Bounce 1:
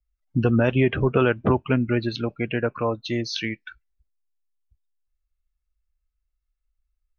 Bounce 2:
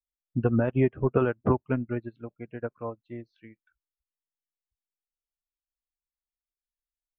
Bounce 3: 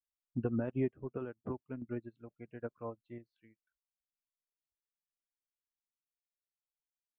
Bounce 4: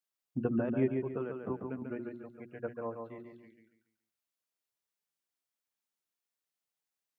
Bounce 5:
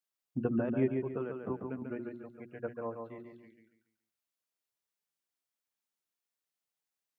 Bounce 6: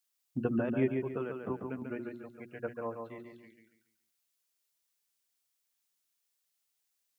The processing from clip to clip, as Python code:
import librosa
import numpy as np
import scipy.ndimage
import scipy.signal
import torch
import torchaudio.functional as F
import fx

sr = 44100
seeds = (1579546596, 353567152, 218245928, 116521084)

y1 = scipy.signal.sosfilt(scipy.signal.butter(2, 1500.0, 'lowpass', fs=sr, output='sos'), x)
y1 = fx.upward_expand(y1, sr, threshold_db=-33.0, expansion=2.5)
y1 = y1 * 10.0 ** (-1.5 / 20.0)
y2 = fx.dynamic_eq(y1, sr, hz=280.0, q=0.93, threshold_db=-35.0, ratio=4.0, max_db=5)
y2 = fx.tremolo_random(y2, sr, seeds[0], hz=2.2, depth_pct=75)
y2 = y2 * 10.0 ** (-8.0 / 20.0)
y3 = scipy.signal.sosfilt(scipy.signal.butter(2, 120.0, 'highpass', fs=sr, output='sos'), y2)
y3 = fx.hum_notches(y3, sr, base_hz=60, count=6)
y3 = fx.echo_feedback(y3, sr, ms=141, feedback_pct=34, wet_db=-5)
y3 = y3 * 10.0 ** (3.5 / 20.0)
y4 = y3
y5 = fx.high_shelf(y4, sr, hz=2300.0, db=10.5)